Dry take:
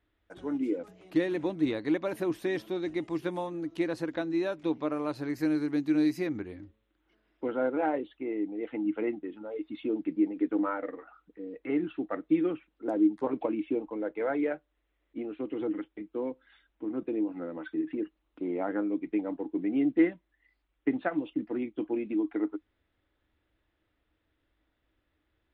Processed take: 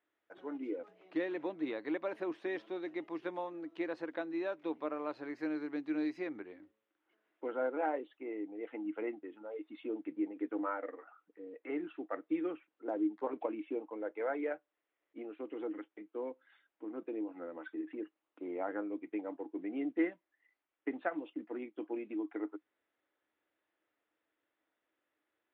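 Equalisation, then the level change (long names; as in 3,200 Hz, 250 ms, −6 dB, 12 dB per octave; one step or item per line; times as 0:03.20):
band-pass filter 390–2,800 Hz
−4.0 dB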